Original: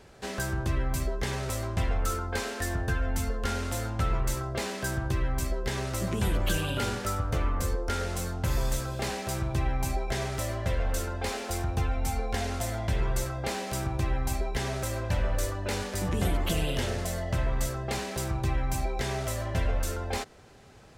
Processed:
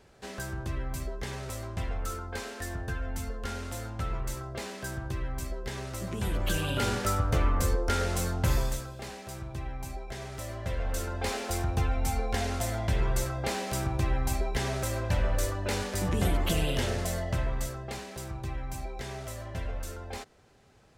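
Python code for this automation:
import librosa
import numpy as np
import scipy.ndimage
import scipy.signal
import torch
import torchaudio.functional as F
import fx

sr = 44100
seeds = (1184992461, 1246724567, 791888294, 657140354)

y = fx.gain(x, sr, db=fx.line((6.07, -5.5), (6.98, 2.5), (8.51, 2.5), (8.95, -9.0), (10.16, -9.0), (11.28, 0.5), (17.16, 0.5), (18.05, -7.5)))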